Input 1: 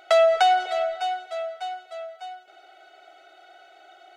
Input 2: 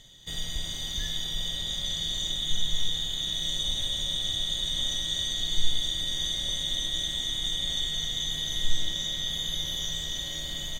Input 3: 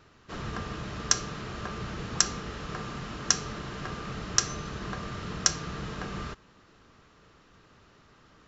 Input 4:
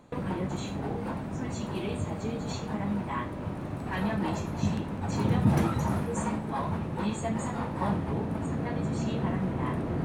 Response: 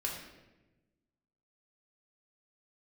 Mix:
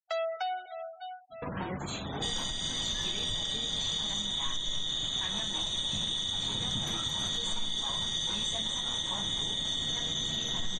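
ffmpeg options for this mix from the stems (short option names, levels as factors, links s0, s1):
-filter_complex "[0:a]adynamicequalizer=threshold=0.02:dfrequency=1500:dqfactor=0.7:tfrequency=1500:tqfactor=0.7:attack=5:release=100:ratio=0.375:range=2.5:mode=cutabove:tftype=highshelf,volume=0.168[s0];[1:a]adelay=1950,volume=1.33[s1];[2:a]acompressor=threshold=0.0141:ratio=6,adelay=1250,volume=0.355[s2];[3:a]equalizer=f=380:w=0.32:g=-4,adelay=1300,volume=1.12[s3];[s0][s1][s2][s3]amix=inputs=4:normalize=0,afftfilt=real='re*gte(hypot(re,im),0.00708)':imag='im*gte(hypot(re,im),0.00708)':win_size=1024:overlap=0.75,tiltshelf=f=670:g=-4,alimiter=limit=0.0708:level=0:latency=1:release=419"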